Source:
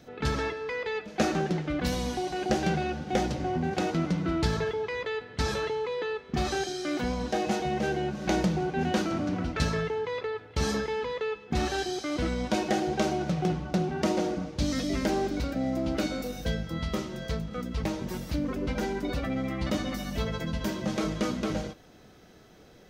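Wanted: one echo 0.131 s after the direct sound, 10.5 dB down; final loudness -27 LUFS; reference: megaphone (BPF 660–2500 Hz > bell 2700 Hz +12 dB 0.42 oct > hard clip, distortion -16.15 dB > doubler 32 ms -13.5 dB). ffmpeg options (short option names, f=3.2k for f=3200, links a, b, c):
-filter_complex "[0:a]highpass=660,lowpass=2.5k,equalizer=f=2.7k:t=o:w=0.42:g=12,aecho=1:1:131:0.299,asoftclip=type=hard:threshold=-28dB,asplit=2[a][b];[b]adelay=32,volume=-13.5dB[c];[a][c]amix=inputs=2:normalize=0,volume=8dB"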